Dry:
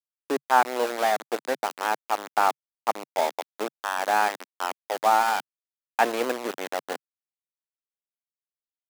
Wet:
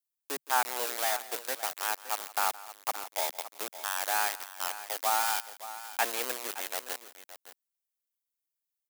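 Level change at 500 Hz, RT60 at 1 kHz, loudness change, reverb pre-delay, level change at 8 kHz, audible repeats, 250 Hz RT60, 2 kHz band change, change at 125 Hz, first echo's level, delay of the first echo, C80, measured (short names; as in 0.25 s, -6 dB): -11.5 dB, none, -5.5 dB, none, +5.0 dB, 2, none, -5.0 dB, n/a, -18.5 dB, 0.168 s, none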